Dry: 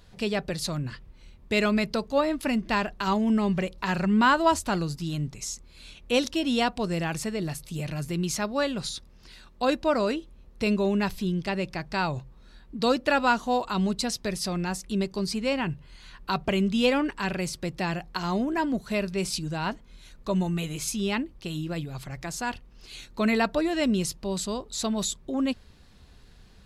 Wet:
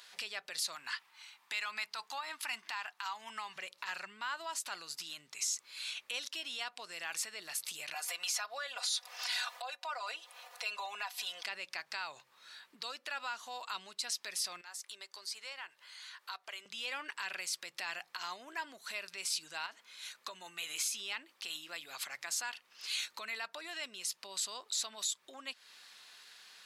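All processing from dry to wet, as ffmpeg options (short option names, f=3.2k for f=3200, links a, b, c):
-filter_complex "[0:a]asettb=1/sr,asplit=3[a][b][c];[a]atrim=end=0.754[d];[b]atrim=start=0.75:end=3.56,asetpts=PTS-STARTPTS,afade=t=in:d=0.004:c=qsin,afade=t=out:st=2.806:d=0.004:c=qsin,highpass=150,lowshelf=f=680:t=q:w=3:g=-6[e];[c]atrim=start=3.556[f];[d][e]acrossfade=d=0.004:c1=hsin:c2=qsin[g];[g][f]acrossfade=d=0.004:c1=qsin:c2=hsin,asettb=1/sr,asplit=3[h][i][j];[h]atrim=end=7.944[k];[i]atrim=start=7.94:end=11.46,asetpts=PTS-STARTPTS,afade=t=in:d=0.004:c=qsin,afade=t=out:st=3.516:d=0.004:c=qsin,aecho=1:1:4.1:0.95,atrim=end_sample=155232,acompressor=mode=upward:threshold=-27dB:ratio=2.5:attack=3.2:release=140:knee=2.83:detection=peak,highpass=f=690:t=q:w=3.9[l];[j]atrim=start=11.456[m];[k][l]acrossfade=d=0.004:c1=hsin:c2=qsin[n];[n][m]acrossfade=d=0.004:c1=qsin:c2=hsin,asettb=1/sr,asplit=3[o][p][q];[o]atrim=end=14.614[r];[p]atrim=start=14.61:end=16.66,asetpts=PTS-STARTPTS,afade=t=in:d=0.004:c=qsin,afade=t=out:st=2.046:d=0.004:c=qsin,highpass=480,equalizer=f=2.6k:w=4.6:g=-5,acompressor=threshold=-57dB:ratio=2:attack=3.2:release=140:knee=1:detection=peak[s];[q]atrim=start=16.656[t];[r][s]acrossfade=d=0.004:c1=hsin:c2=qsin[u];[u][t]acrossfade=d=0.004:c1=qsin:c2=hsin,asettb=1/sr,asplit=3[v][w][x];[v]atrim=end=19.664[y];[w]atrim=start=19.66:end=22.15,asetpts=PTS-STARTPTS,afade=t=in:d=0.004:c=qsin,afade=t=out:st=2.486:d=0.004:c=qsin,highpass=150,acompressor=threshold=-38dB:ratio=3:attack=3.2:release=140:knee=1:detection=peak[z];[x]atrim=start=22.146[aa];[y][z]acrossfade=d=0.004:c1=hsin:c2=qsin[ab];[ab][aa]acrossfade=d=0.004:c1=qsin:c2=hsin,acompressor=threshold=-35dB:ratio=5,alimiter=level_in=7.5dB:limit=-24dB:level=0:latency=1:release=87,volume=-7.5dB,highpass=1.4k,volume=7.5dB"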